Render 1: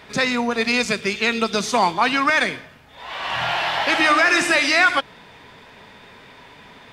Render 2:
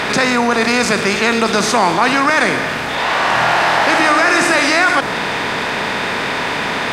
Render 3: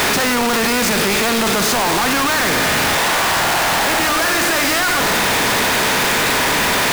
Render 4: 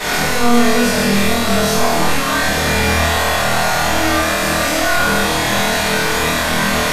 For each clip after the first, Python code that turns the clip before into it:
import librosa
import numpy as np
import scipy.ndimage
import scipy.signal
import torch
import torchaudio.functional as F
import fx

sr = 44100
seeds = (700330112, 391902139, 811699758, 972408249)

y1 = fx.bin_compress(x, sr, power=0.6)
y1 = fx.dynamic_eq(y1, sr, hz=3100.0, q=0.97, threshold_db=-27.0, ratio=4.0, max_db=-6)
y1 = fx.env_flatten(y1, sr, amount_pct=50)
y1 = y1 * 10.0 ** (1.5 / 20.0)
y2 = np.sign(y1) * np.sqrt(np.mean(np.square(y1)))
y2 = y2 * 10.0 ** (-1.0 / 20.0)
y3 = fx.brickwall_lowpass(y2, sr, high_hz=14000.0)
y3 = fx.room_flutter(y3, sr, wall_m=4.3, rt60_s=0.89)
y3 = fx.room_shoebox(y3, sr, seeds[0], volume_m3=230.0, walls='furnished', distance_m=6.3)
y3 = y3 * 10.0 ** (-15.5 / 20.0)